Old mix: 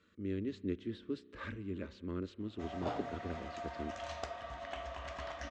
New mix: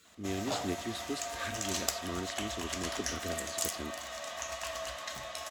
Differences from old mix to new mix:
background: entry −2.35 s
master: remove head-to-tape spacing loss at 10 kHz 35 dB

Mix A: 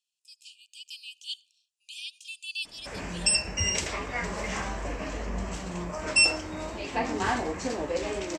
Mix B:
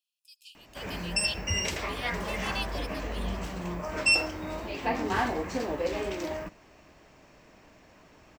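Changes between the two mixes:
background: entry −2.10 s
master: remove low-pass with resonance 7,800 Hz, resonance Q 2.5

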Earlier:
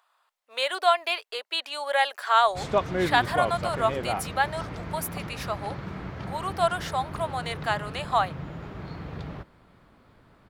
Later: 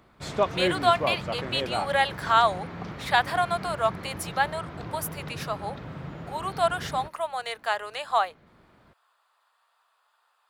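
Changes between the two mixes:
background: entry −2.35 s
master: add low-shelf EQ 61 Hz −10 dB

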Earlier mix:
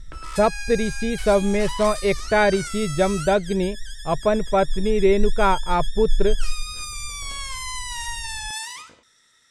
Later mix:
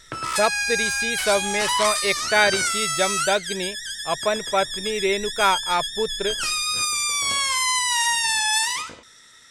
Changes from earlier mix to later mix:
speech: add spectral tilt +4.5 dB per octave
background +10.0 dB

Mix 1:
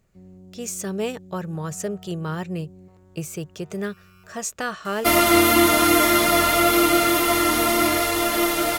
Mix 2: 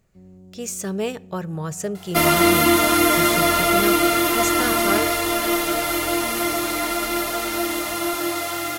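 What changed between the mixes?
speech: send on
second sound: entry −2.90 s

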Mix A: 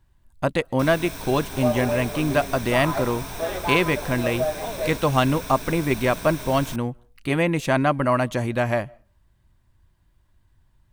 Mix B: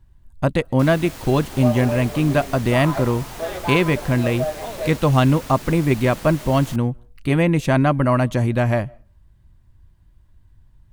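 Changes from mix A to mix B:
speech: add low-shelf EQ 250 Hz +10 dB
first sound: remove EQ curve with evenly spaced ripples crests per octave 1.6, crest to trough 9 dB

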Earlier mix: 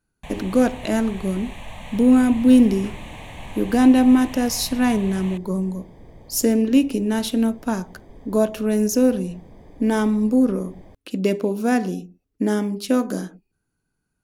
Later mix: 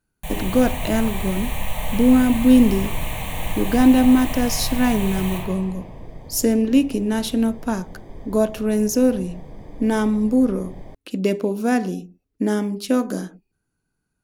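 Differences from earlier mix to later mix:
first sound: remove high-frequency loss of the air 82 metres
second sound +3.5 dB
reverb: on, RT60 2.1 s

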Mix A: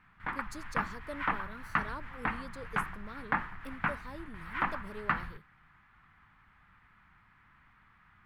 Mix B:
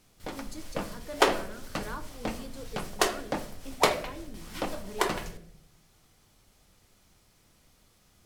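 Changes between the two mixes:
first sound: remove drawn EQ curve 190 Hz 0 dB, 550 Hz −15 dB, 1,000 Hz +10 dB, 1,800 Hz +13 dB, 5,900 Hz −27 dB
second sound: unmuted
reverb: on, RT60 0.65 s

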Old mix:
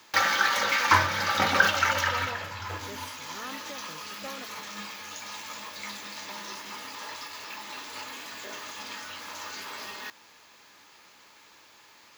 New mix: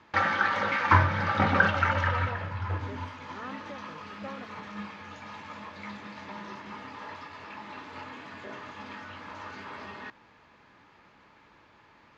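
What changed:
background: add bass and treble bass +10 dB, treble +2 dB
master: add low-pass filter 1,900 Hz 12 dB per octave

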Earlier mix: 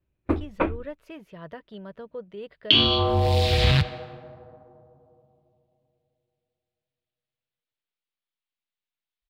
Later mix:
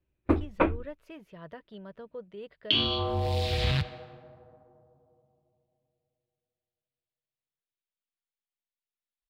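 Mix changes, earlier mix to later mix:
speech −4.5 dB
second sound −7.5 dB

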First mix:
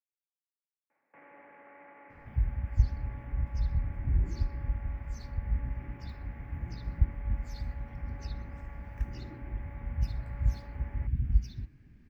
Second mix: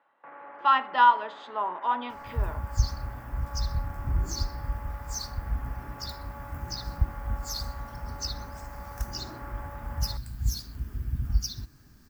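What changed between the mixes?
speech: unmuted
first sound: entry −0.90 s
master: remove drawn EQ curve 170 Hz 0 dB, 350 Hz −3 dB, 1,300 Hz −15 dB, 2,200 Hz +2 dB, 4,600 Hz −21 dB, 13,000 Hz −27 dB

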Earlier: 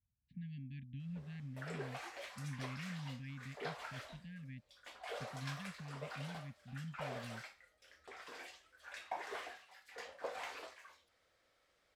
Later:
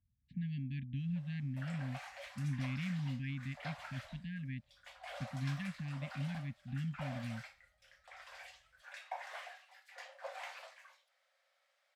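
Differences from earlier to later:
speech +7.5 dB
background: add Chebyshev high-pass with heavy ripple 530 Hz, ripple 3 dB

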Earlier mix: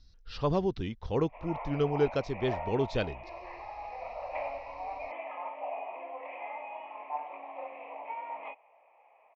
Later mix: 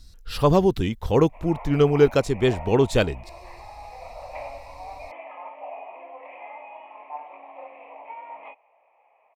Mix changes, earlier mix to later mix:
speech +10.5 dB
master: remove Butterworth low-pass 5,900 Hz 48 dB per octave

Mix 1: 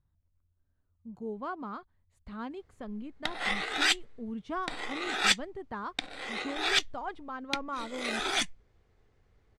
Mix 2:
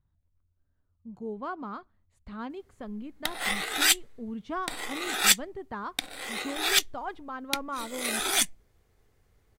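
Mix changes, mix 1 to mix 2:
background: remove high-frequency loss of the air 110 metres
reverb: on, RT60 0.50 s

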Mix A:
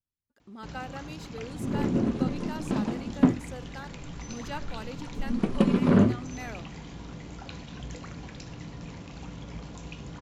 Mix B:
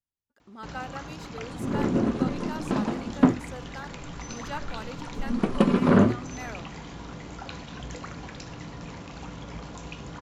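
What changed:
speech −3.5 dB
master: add drawn EQ curve 160 Hz 0 dB, 1,300 Hz +7 dB, 2,400 Hz +3 dB

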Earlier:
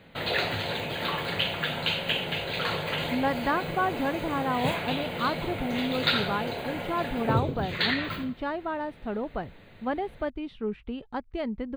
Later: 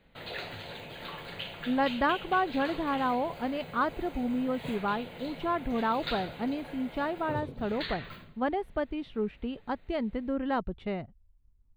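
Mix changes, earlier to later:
speech: entry −1.45 s
background −11.5 dB

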